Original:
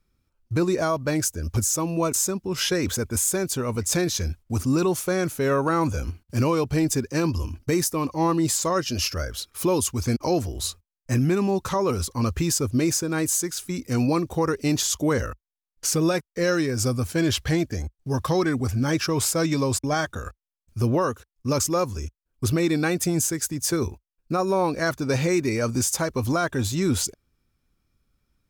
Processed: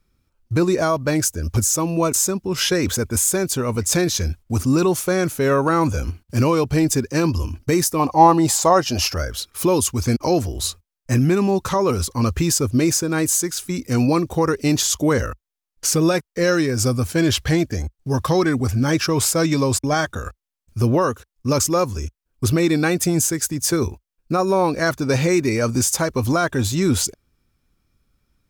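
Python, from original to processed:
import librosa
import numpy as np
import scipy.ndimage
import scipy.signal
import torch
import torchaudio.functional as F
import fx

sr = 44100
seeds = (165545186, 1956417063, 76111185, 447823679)

y = fx.peak_eq(x, sr, hz=780.0, db=14.0, octaves=0.59, at=(7.99, 9.16))
y = y * librosa.db_to_amplitude(4.5)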